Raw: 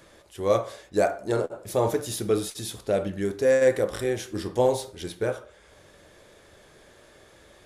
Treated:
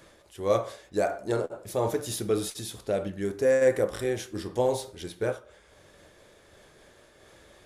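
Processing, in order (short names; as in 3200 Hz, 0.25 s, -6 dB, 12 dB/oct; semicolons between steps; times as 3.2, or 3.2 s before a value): 3.31–3.92 bell 3800 Hz -5.5 dB 0.77 oct; noise-modulated level, depth 55%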